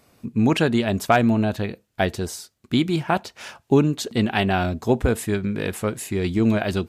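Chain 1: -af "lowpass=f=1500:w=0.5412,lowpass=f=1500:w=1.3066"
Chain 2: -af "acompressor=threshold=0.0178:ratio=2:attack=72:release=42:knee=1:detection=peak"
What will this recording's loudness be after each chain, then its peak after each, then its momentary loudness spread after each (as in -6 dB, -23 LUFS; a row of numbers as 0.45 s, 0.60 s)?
-22.5 LUFS, -28.0 LUFS; -5.0 dBFS, -9.0 dBFS; 8 LU, 7 LU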